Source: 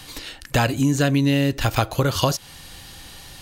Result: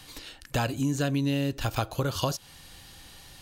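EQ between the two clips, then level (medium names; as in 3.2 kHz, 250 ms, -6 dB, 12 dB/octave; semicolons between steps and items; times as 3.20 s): dynamic bell 2 kHz, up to -6 dB, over -46 dBFS, Q 4.3; -8.0 dB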